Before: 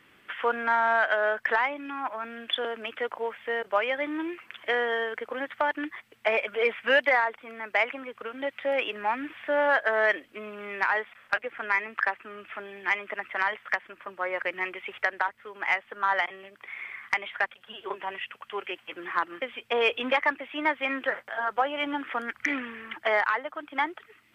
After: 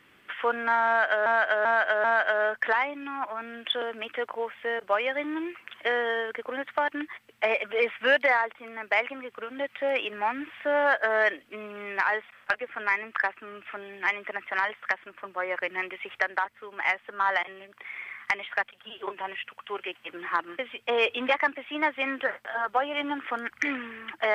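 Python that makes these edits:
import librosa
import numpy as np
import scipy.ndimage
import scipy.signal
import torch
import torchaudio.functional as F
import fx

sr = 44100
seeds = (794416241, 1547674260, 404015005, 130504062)

y = fx.edit(x, sr, fx.repeat(start_s=0.87, length_s=0.39, count=4), tone=tone)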